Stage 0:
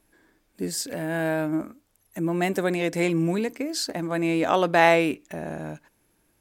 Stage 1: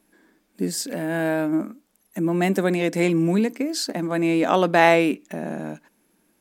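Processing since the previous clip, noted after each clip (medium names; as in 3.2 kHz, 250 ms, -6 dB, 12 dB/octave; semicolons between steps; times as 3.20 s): resonant low shelf 150 Hz -9 dB, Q 3; trim +1.5 dB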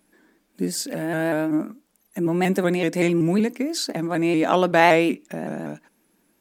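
vibrato with a chosen wave saw up 5.3 Hz, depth 100 cents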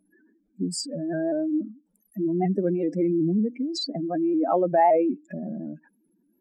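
spectral contrast enhancement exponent 2.7; trim -2.5 dB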